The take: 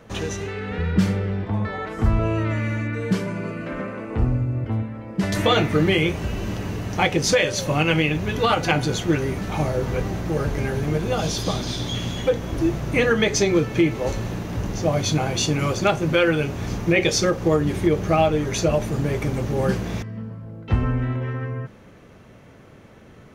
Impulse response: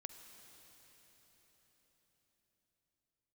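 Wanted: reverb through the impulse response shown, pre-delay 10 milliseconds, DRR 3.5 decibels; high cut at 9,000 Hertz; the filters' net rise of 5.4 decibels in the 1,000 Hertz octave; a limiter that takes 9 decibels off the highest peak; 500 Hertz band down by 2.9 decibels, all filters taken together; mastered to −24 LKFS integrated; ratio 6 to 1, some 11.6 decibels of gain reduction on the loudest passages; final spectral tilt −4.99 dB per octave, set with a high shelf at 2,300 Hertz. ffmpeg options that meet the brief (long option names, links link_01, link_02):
-filter_complex "[0:a]lowpass=9000,equalizer=frequency=500:width_type=o:gain=-6,equalizer=frequency=1000:width_type=o:gain=8.5,highshelf=frequency=2300:gain=4,acompressor=threshold=-24dB:ratio=6,alimiter=limit=-21dB:level=0:latency=1,asplit=2[link_01][link_02];[1:a]atrim=start_sample=2205,adelay=10[link_03];[link_02][link_03]afir=irnorm=-1:irlink=0,volume=1dB[link_04];[link_01][link_04]amix=inputs=2:normalize=0,volume=4.5dB"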